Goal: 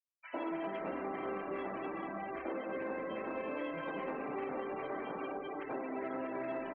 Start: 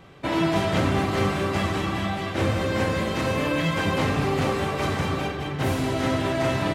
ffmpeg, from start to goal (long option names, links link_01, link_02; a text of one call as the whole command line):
ffmpeg -i in.wav -filter_complex "[0:a]highpass=210,acrossover=split=280 3000:gain=0.0794 1 0.126[link_01][link_02][link_03];[link_01][link_02][link_03]amix=inputs=3:normalize=0,afftfilt=real='re*gte(hypot(re,im),0.0355)':imag='im*gte(hypot(re,im),0.0355)':win_size=1024:overlap=0.75,asplit=2[link_04][link_05];[link_05]asplit=2[link_06][link_07];[link_06]adelay=221,afreqshift=-130,volume=-22.5dB[link_08];[link_07]adelay=442,afreqshift=-260,volume=-32.1dB[link_09];[link_08][link_09]amix=inputs=2:normalize=0[link_10];[link_04][link_10]amix=inputs=2:normalize=0,acrossover=split=270|1600[link_11][link_12][link_13];[link_11]acompressor=threshold=-44dB:ratio=4[link_14];[link_12]acompressor=threshold=-40dB:ratio=4[link_15];[link_13]acompressor=threshold=-51dB:ratio=4[link_16];[link_14][link_15][link_16]amix=inputs=3:normalize=0,acrossover=split=1500[link_17][link_18];[link_17]adelay=100[link_19];[link_19][link_18]amix=inputs=2:normalize=0,aeval=exprs='0.0473*(cos(1*acos(clip(val(0)/0.0473,-1,1)))-cos(1*PI/2))+0.00211*(cos(3*acos(clip(val(0)/0.0473,-1,1)))-cos(3*PI/2))':channel_layout=same" out.wav